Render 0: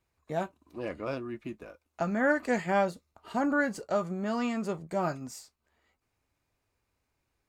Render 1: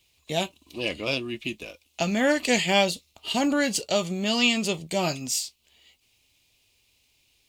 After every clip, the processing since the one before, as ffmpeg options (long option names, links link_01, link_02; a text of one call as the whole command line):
ffmpeg -i in.wav -af "highshelf=frequency=2100:width_type=q:width=3:gain=12.5,volume=5dB" out.wav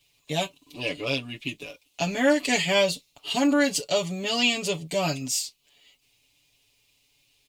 ffmpeg -i in.wav -af "aecho=1:1:7:0.99,volume=-3dB" out.wav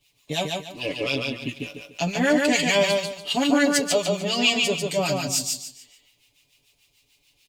ffmpeg -i in.wav -filter_complex "[0:a]acrossover=split=970[link_01][link_02];[link_01]aeval=exprs='val(0)*(1-0.7/2+0.7/2*cos(2*PI*6.8*n/s))':channel_layout=same[link_03];[link_02]aeval=exprs='val(0)*(1-0.7/2-0.7/2*cos(2*PI*6.8*n/s))':channel_layout=same[link_04];[link_03][link_04]amix=inputs=2:normalize=0,asplit=2[link_05][link_06];[link_06]aecho=0:1:145|290|435|580:0.708|0.212|0.0637|0.0191[link_07];[link_05][link_07]amix=inputs=2:normalize=0,volume=4dB" out.wav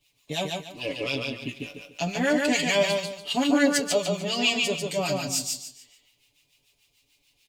ffmpeg -i in.wav -af "flanger=delay=3.2:depth=8:regen=85:speed=0.28:shape=triangular,volume=1.5dB" out.wav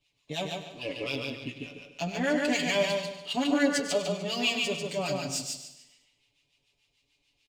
ffmpeg -i in.wav -filter_complex "[0:a]adynamicsmooth=sensitivity=5:basefreq=6700,asplit=2[link_01][link_02];[link_02]aecho=0:1:101|202|303|404|505:0.224|0.11|0.0538|0.0263|0.0129[link_03];[link_01][link_03]amix=inputs=2:normalize=0,volume=-4dB" out.wav